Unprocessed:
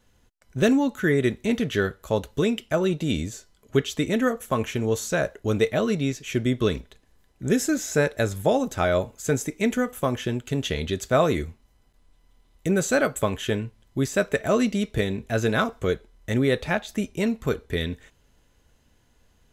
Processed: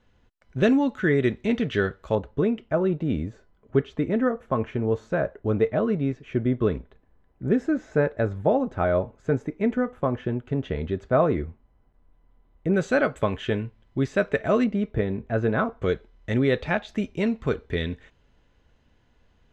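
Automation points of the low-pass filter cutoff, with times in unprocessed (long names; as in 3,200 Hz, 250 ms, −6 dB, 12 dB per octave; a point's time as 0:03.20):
3,300 Hz
from 0:02.15 1,400 Hz
from 0:12.74 2,900 Hz
from 0:14.64 1,500 Hz
from 0:15.82 3,500 Hz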